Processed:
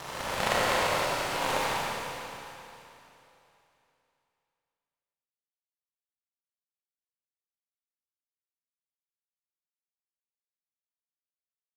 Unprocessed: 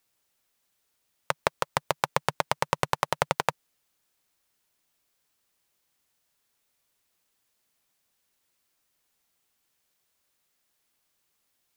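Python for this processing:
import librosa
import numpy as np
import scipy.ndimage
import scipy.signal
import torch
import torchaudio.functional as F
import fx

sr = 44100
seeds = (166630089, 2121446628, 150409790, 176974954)

y = fx.paulstretch(x, sr, seeds[0], factor=4.0, window_s=0.25, from_s=3.1)
y = fx.power_curve(y, sr, exponent=3.0)
y = fx.rev_schroeder(y, sr, rt60_s=3.0, comb_ms=29, drr_db=-6.5)
y = y * 10.0 ** (6.5 / 20.0)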